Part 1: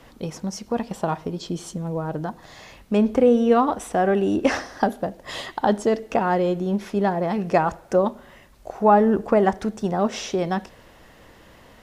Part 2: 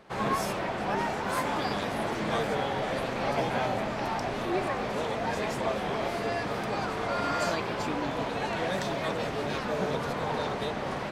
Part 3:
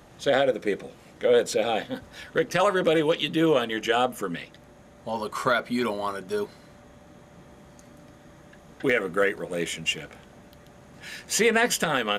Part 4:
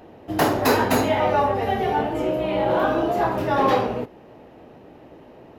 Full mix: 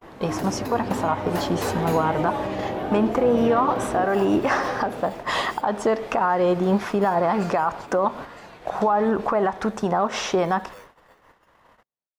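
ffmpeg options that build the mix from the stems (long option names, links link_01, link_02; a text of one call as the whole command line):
ffmpeg -i stem1.wav -i stem2.wav -i stem3.wav -i stem4.wav -filter_complex "[0:a]equalizer=frequency=1100:width_type=o:width=1.7:gain=14,alimiter=limit=-5.5dB:level=0:latency=1:release=274,volume=1.5dB[link_01];[1:a]volume=-8.5dB,afade=type=out:start_time=9.03:duration=0.57:silence=0.237137,asplit=2[link_02][link_03];[link_03]volume=-10.5dB[link_04];[2:a]bandpass=frequency=830:width_type=q:width=1.8:csg=0,acrusher=samples=11:mix=1:aa=0.000001,adelay=1550,volume=-17.5dB[link_05];[3:a]volume=0dB,asplit=2[link_06][link_07];[link_07]volume=-10.5dB[link_08];[link_01][link_02]amix=inputs=2:normalize=0,agate=range=-7dB:threshold=-32dB:ratio=16:detection=peak,alimiter=limit=-12dB:level=0:latency=1:release=115,volume=0dB[link_09];[link_05][link_06]amix=inputs=2:normalize=0,acrossover=split=420[link_10][link_11];[link_11]acompressor=threshold=-30dB:ratio=5[link_12];[link_10][link_12]amix=inputs=2:normalize=0,alimiter=limit=-21.5dB:level=0:latency=1:release=101,volume=0dB[link_13];[link_04][link_08]amix=inputs=2:normalize=0,aecho=0:1:962:1[link_14];[link_09][link_13][link_14]amix=inputs=3:normalize=0,agate=range=-36dB:threshold=-45dB:ratio=16:detection=peak" out.wav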